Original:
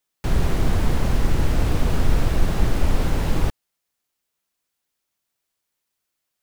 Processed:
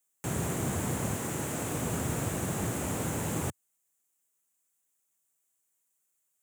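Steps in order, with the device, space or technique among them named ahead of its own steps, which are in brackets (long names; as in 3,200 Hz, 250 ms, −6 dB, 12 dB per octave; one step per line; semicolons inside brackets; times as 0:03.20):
0:01.14–0:01.76: high-pass filter 180 Hz 6 dB per octave
budget condenser microphone (high-pass filter 98 Hz 24 dB per octave; high shelf with overshoot 6,000 Hz +7.5 dB, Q 3)
level −6 dB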